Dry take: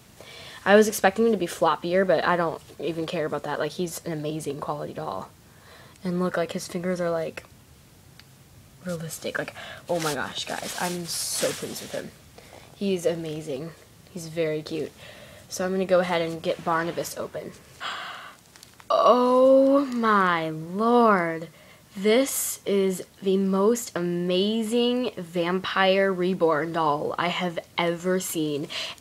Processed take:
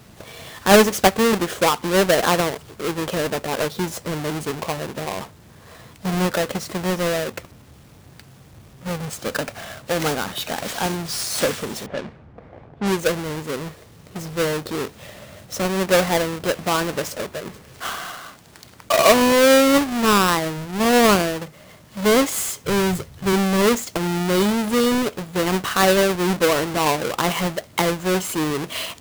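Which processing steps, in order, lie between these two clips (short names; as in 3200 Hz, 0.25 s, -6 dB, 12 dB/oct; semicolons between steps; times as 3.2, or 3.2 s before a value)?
half-waves squared off; 11.86–13 low-pass opened by the level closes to 1000 Hz, open at -18 dBFS; 22.65–23.33 resonant low shelf 170 Hz +10.5 dB, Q 1.5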